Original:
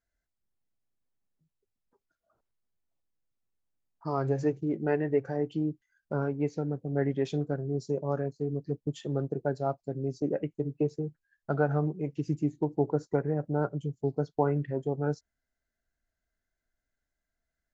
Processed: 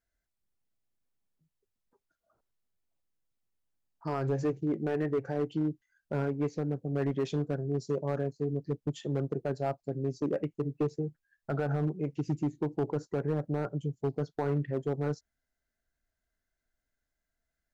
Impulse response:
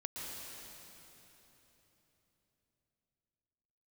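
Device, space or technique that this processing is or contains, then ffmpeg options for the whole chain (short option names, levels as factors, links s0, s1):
limiter into clipper: -af "alimiter=limit=0.106:level=0:latency=1:release=19,asoftclip=type=hard:threshold=0.0668"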